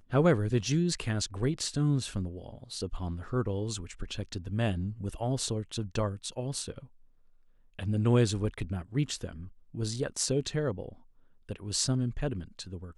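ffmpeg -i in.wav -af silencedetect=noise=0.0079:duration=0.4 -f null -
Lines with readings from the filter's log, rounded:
silence_start: 6.84
silence_end: 7.79 | silence_duration: 0.95
silence_start: 10.93
silence_end: 11.49 | silence_duration: 0.56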